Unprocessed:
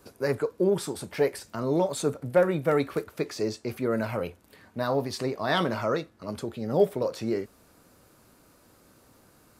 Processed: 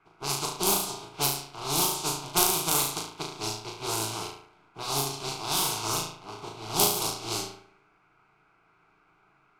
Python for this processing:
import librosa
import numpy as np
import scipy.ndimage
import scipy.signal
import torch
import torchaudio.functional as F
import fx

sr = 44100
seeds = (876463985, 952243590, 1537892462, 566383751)

p1 = fx.spec_flatten(x, sr, power=0.22)
p2 = p1 + fx.room_flutter(p1, sr, wall_m=6.2, rt60_s=0.65, dry=0)
p3 = fx.dmg_noise_band(p2, sr, seeds[0], low_hz=1300.0, high_hz=2500.0, level_db=-51.0)
p4 = fx.env_lowpass(p3, sr, base_hz=1300.0, full_db=-18.5)
p5 = fx.fixed_phaser(p4, sr, hz=360.0, stages=8)
y = F.gain(torch.from_numpy(p5), -1.0).numpy()